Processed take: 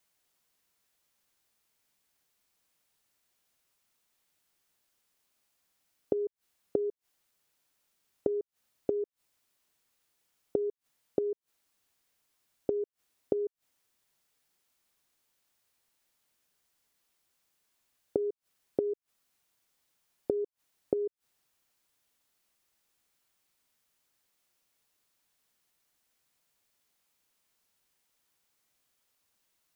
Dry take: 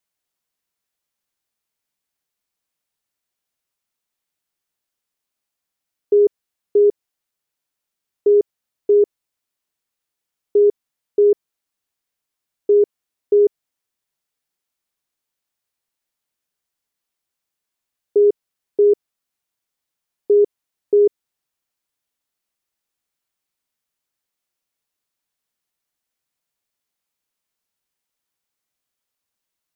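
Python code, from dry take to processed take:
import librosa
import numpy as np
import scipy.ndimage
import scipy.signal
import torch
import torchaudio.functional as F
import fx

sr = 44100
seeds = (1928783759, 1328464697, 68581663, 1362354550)

y = fx.gate_flip(x, sr, shuts_db=-21.0, range_db=-25)
y = F.gain(torch.from_numpy(y), 5.5).numpy()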